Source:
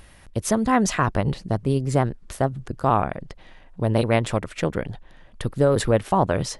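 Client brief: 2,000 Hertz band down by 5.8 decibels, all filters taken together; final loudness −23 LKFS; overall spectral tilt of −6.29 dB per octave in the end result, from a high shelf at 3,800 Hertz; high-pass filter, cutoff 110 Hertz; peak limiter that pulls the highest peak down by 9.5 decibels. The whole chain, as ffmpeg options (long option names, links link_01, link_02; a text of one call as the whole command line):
ffmpeg -i in.wav -af "highpass=110,equalizer=frequency=2000:width_type=o:gain=-6,highshelf=frequency=3800:gain=-6.5,volume=6dB,alimiter=limit=-10.5dB:level=0:latency=1" out.wav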